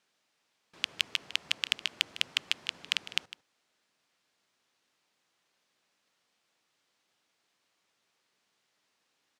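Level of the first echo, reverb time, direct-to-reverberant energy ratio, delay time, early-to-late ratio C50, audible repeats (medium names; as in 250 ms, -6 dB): -16.5 dB, no reverb, no reverb, 154 ms, no reverb, 1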